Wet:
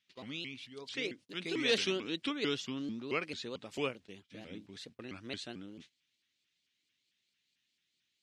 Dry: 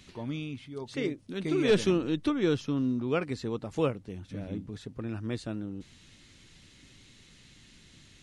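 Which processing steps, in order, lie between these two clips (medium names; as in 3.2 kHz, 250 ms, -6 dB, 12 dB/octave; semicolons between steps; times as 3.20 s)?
frequency weighting D; gate -44 dBFS, range -25 dB; bass shelf 130 Hz -6.5 dB; vibrato with a chosen wave saw up 4.5 Hz, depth 250 cents; trim -7.5 dB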